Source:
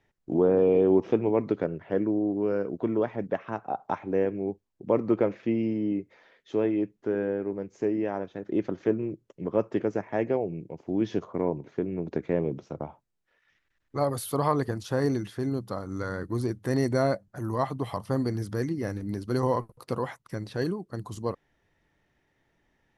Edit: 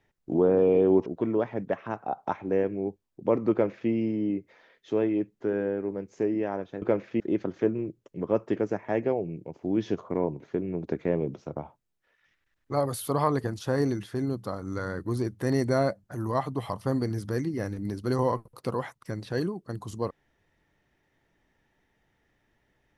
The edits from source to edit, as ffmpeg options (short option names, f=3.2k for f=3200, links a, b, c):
-filter_complex "[0:a]asplit=4[a][b][c][d];[a]atrim=end=1.062[e];[b]atrim=start=2.678:end=8.442[f];[c]atrim=start=5.138:end=5.522[g];[d]atrim=start=8.438[h];[e][f]acrossfade=d=0.004:c1=hsin:c2=hsin[i];[i][g]acrossfade=d=0.004:c1=hsin:c2=hsin[j];[j][h]acrossfade=d=0.004:c1=hsin:c2=hsin"